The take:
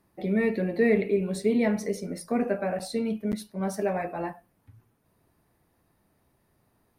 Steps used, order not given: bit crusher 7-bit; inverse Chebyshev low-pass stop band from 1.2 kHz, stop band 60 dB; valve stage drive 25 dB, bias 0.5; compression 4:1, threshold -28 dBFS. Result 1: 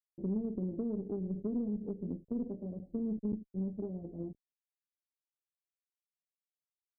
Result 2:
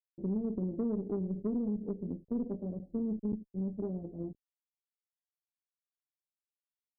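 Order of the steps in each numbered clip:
compression > bit crusher > inverse Chebyshev low-pass > valve stage; bit crusher > inverse Chebyshev low-pass > compression > valve stage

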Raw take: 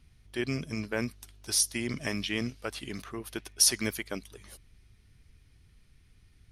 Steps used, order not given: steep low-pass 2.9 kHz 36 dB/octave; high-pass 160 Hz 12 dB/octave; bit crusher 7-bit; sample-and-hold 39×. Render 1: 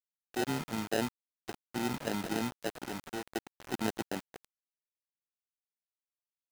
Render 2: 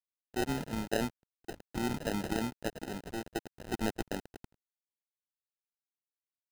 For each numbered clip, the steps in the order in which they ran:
steep low-pass > sample-and-hold > high-pass > bit crusher; steep low-pass > bit crusher > high-pass > sample-and-hold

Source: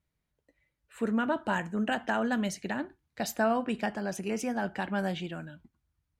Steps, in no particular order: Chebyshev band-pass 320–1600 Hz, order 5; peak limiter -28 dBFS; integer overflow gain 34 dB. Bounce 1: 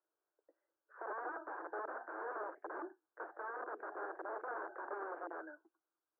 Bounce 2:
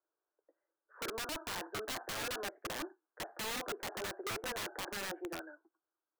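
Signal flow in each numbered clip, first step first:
peak limiter > integer overflow > Chebyshev band-pass; Chebyshev band-pass > peak limiter > integer overflow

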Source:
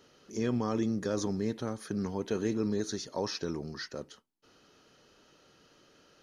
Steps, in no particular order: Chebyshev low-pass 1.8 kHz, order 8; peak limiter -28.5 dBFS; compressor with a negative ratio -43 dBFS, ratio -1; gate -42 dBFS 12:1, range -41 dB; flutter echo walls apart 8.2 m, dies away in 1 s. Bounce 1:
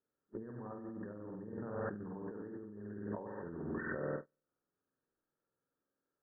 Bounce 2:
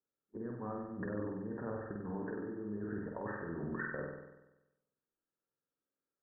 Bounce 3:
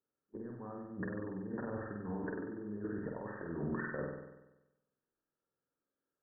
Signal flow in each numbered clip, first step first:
flutter echo > gate > compressor with a negative ratio > Chebyshev low-pass > peak limiter; gate > peak limiter > Chebyshev low-pass > compressor with a negative ratio > flutter echo; gate > compressor with a negative ratio > Chebyshev low-pass > peak limiter > flutter echo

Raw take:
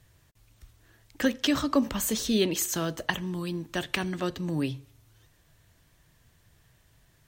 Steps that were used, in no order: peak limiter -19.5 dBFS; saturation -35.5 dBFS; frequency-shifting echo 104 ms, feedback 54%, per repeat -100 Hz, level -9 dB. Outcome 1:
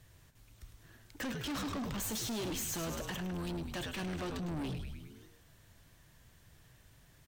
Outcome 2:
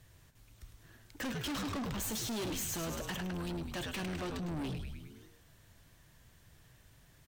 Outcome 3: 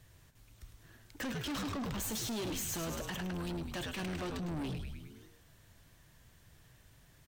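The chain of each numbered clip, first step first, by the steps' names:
peak limiter > frequency-shifting echo > saturation; frequency-shifting echo > saturation > peak limiter; frequency-shifting echo > peak limiter > saturation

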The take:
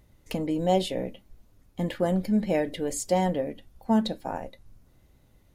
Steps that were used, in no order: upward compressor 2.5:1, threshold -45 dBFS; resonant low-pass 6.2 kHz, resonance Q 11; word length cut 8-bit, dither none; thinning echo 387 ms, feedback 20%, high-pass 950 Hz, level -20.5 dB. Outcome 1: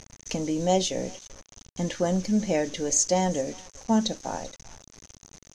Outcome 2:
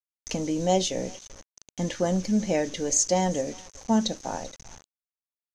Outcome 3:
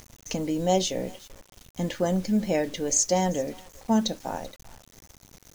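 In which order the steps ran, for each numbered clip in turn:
upward compressor > thinning echo > word length cut > resonant low-pass; thinning echo > word length cut > upward compressor > resonant low-pass; thinning echo > upward compressor > resonant low-pass > word length cut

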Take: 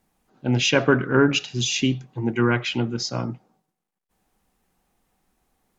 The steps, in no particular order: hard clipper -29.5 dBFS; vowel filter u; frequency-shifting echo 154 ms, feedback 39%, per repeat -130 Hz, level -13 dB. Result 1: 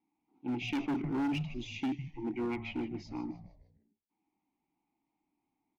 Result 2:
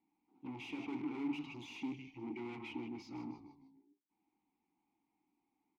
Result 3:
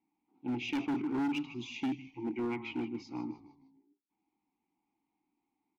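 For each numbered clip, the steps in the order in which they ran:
vowel filter > frequency-shifting echo > hard clipper; frequency-shifting echo > hard clipper > vowel filter; frequency-shifting echo > vowel filter > hard clipper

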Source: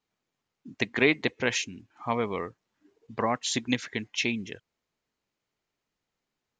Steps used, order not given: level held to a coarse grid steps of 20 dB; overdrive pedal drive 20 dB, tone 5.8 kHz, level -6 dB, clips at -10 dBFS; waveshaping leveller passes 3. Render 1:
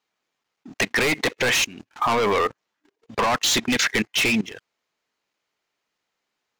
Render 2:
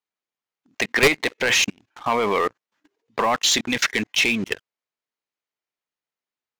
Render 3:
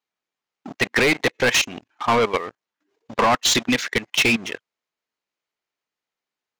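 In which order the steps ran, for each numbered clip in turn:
overdrive pedal > waveshaping leveller > level held to a coarse grid; level held to a coarse grid > overdrive pedal > waveshaping leveller; waveshaping leveller > level held to a coarse grid > overdrive pedal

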